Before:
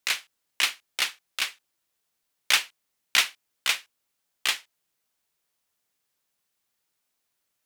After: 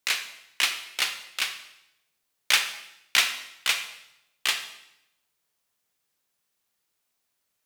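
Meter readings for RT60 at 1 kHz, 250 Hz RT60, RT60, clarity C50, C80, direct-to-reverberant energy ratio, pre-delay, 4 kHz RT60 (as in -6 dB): 0.80 s, 0.95 s, 0.85 s, 9.0 dB, 11.5 dB, 7.0 dB, 21 ms, 0.80 s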